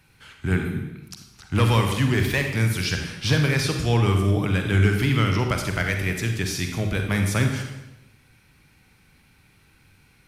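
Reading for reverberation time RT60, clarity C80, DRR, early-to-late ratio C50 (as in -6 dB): 0.90 s, 7.5 dB, 4.0 dB, 5.0 dB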